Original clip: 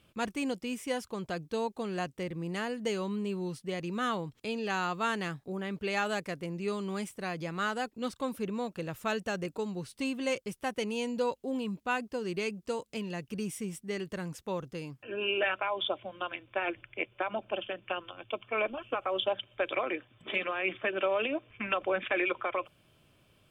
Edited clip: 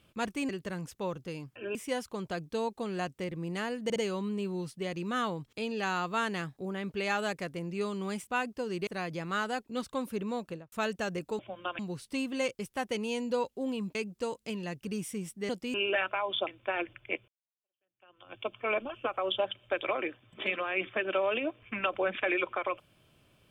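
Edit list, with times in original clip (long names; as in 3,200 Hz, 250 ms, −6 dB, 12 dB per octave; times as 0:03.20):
0:00.49–0:00.74: swap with 0:13.96–0:15.22
0:02.83: stutter 0.06 s, 3 plays
0:08.71–0:08.99: fade out and dull
0:11.82–0:12.42: move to 0:07.14
0:15.95–0:16.35: move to 0:09.66
0:17.16–0:18.21: fade in exponential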